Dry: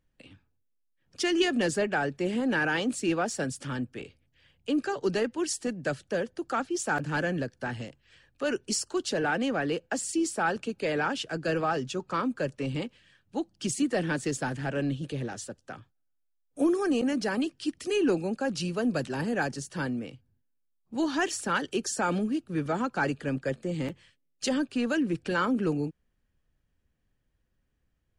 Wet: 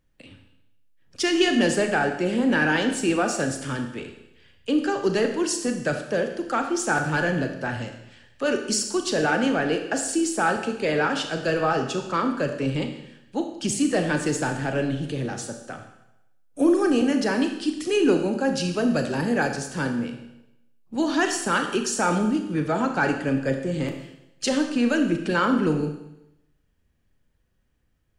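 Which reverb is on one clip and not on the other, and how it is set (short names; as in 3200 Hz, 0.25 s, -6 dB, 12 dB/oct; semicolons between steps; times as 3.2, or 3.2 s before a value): Schroeder reverb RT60 0.87 s, combs from 26 ms, DRR 5 dB; gain +4.5 dB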